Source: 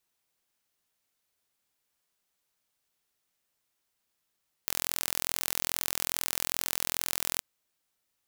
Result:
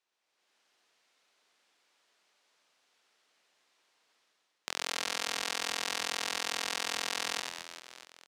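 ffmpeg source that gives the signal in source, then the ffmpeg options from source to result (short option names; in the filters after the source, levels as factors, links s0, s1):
-f lavfi -i "aevalsrc='0.75*eq(mod(n,1040),0)':d=2.72:s=44100"
-filter_complex "[0:a]dynaudnorm=f=110:g=7:m=3.55,highpass=350,lowpass=4900,asplit=2[s0][s1];[s1]aecho=0:1:90|216|392.4|639.4|985.1:0.631|0.398|0.251|0.158|0.1[s2];[s0][s2]amix=inputs=2:normalize=0"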